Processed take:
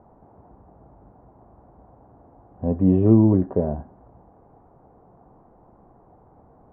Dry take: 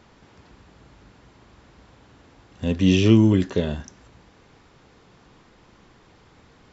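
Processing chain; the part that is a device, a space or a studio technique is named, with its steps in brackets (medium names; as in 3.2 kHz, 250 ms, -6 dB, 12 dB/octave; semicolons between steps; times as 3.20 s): under water (low-pass 1 kHz 24 dB/octave; peaking EQ 720 Hz +9 dB 0.52 oct)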